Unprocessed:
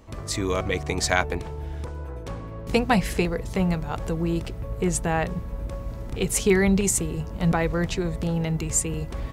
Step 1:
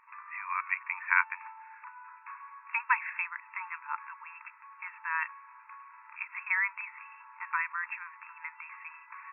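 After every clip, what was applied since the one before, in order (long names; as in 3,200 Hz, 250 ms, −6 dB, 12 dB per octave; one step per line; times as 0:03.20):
brick-wall band-pass 880–2,700 Hz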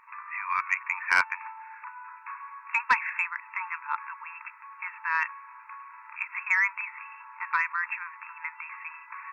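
soft clipping −16.5 dBFS, distortion −15 dB
level +5.5 dB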